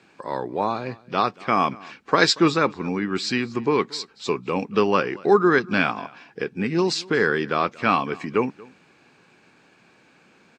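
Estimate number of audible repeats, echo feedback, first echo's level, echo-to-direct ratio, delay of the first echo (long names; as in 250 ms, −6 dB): 1, repeats not evenly spaced, −23.0 dB, −23.0 dB, 232 ms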